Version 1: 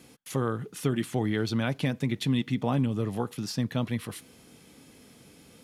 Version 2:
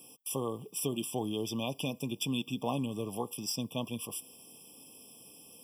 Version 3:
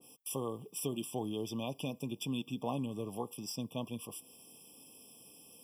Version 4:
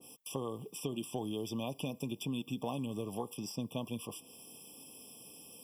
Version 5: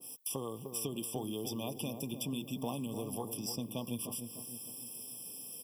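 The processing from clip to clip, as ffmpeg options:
-af "aemphasis=mode=production:type=bsi,afftfilt=real='re*eq(mod(floor(b*sr/1024/1200),2),0)':imag='im*eq(mod(floor(b*sr/1024/1200),2),0)':win_size=1024:overlap=0.75,volume=-2.5dB"
-af "adynamicequalizer=threshold=0.00224:dfrequency=1600:dqfactor=0.7:tfrequency=1600:tqfactor=0.7:attack=5:release=100:ratio=0.375:range=2:mode=cutabove:tftype=highshelf,volume=-3dB"
-filter_complex "[0:a]acrossover=split=2400|6600[a][b][c];[a]acompressor=threshold=-38dB:ratio=4[d];[b]acompressor=threshold=-53dB:ratio=4[e];[c]acompressor=threshold=-54dB:ratio=4[f];[d][e][f]amix=inputs=3:normalize=0,volume=4dB"
-filter_complex "[0:a]aexciter=amount=2.5:drive=3.7:freq=3.9k,asplit=2[a][b];[b]adelay=302,lowpass=f=910:p=1,volume=-7dB,asplit=2[c][d];[d]adelay=302,lowpass=f=910:p=1,volume=0.52,asplit=2[e][f];[f]adelay=302,lowpass=f=910:p=1,volume=0.52,asplit=2[g][h];[h]adelay=302,lowpass=f=910:p=1,volume=0.52,asplit=2[i][j];[j]adelay=302,lowpass=f=910:p=1,volume=0.52,asplit=2[k][l];[l]adelay=302,lowpass=f=910:p=1,volume=0.52[m];[a][c][e][g][i][k][m]amix=inputs=7:normalize=0,volume=-1.5dB"

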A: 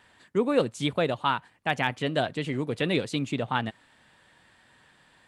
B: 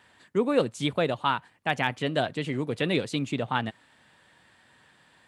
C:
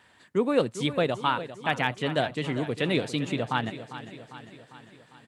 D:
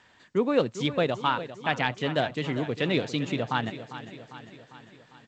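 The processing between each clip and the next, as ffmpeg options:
-af "highpass=61"
-af "aecho=1:1:400|800|1200|1600|2000|2400:0.224|0.13|0.0753|0.0437|0.0253|0.0147"
-ar 16000 -c:a g722

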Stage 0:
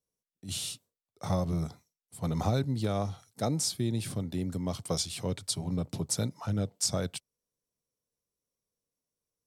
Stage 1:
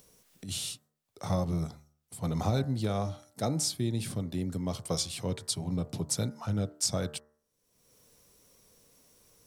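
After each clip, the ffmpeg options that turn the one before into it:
-af "acompressor=mode=upward:threshold=-40dB:ratio=2.5,bandreject=f=74.97:t=h:w=4,bandreject=f=149.94:t=h:w=4,bandreject=f=224.91:t=h:w=4,bandreject=f=299.88:t=h:w=4,bandreject=f=374.85:t=h:w=4,bandreject=f=449.82:t=h:w=4,bandreject=f=524.79:t=h:w=4,bandreject=f=599.76:t=h:w=4,bandreject=f=674.73:t=h:w=4,bandreject=f=749.7:t=h:w=4,bandreject=f=824.67:t=h:w=4,bandreject=f=899.64:t=h:w=4,bandreject=f=974.61:t=h:w=4,bandreject=f=1.04958k:t=h:w=4,bandreject=f=1.12455k:t=h:w=4,bandreject=f=1.19952k:t=h:w=4,bandreject=f=1.27449k:t=h:w=4,bandreject=f=1.34946k:t=h:w=4,bandreject=f=1.42443k:t=h:w=4,bandreject=f=1.4994k:t=h:w=4,bandreject=f=1.57437k:t=h:w=4,bandreject=f=1.64934k:t=h:w=4,bandreject=f=1.72431k:t=h:w=4,bandreject=f=1.79928k:t=h:w=4,bandreject=f=1.87425k:t=h:w=4,bandreject=f=1.94922k:t=h:w=4"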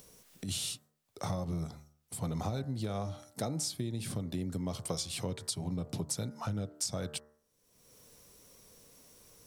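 -af "acompressor=threshold=-36dB:ratio=6,volume=3.5dB"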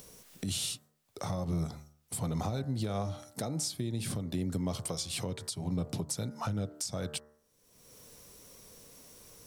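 -af "alimiter=level_in=4dB:limit=-24dB:level=0:latency=1:release=322,volume=-4dB,volume=4.5dB"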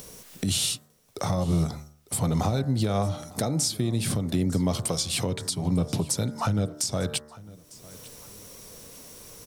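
-af "aecho=1:1:901|1802:0.0891|0.0294,volume=8.5dB"

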